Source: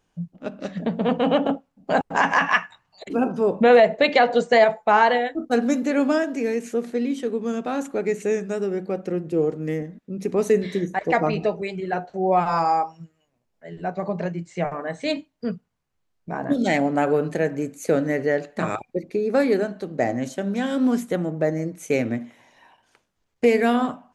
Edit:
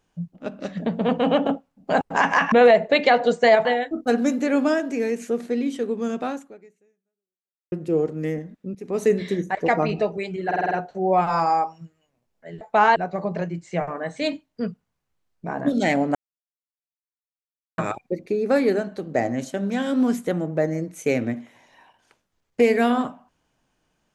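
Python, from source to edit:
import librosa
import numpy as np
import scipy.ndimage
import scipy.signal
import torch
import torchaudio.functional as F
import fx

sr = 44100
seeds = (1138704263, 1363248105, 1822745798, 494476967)

y = fx.edit(x, sr, fx.cut(start_s=2.52, length_s=1.09),
    fx.move(start_s=4.74, length_s=0.35, to_s=13.8),
    fx.fade_out_span(start_s=7.71, length_s=1.45, curve='exp'),
    fx.fade_in_from(start_s=10.19, length_s=0.34, floor_db=-19.5),
    fx.stutter(start_s=11.9, slice_s=0.05, count=6),
    fx.silence(start_s=16.99, length_s=1.63), tone=tone)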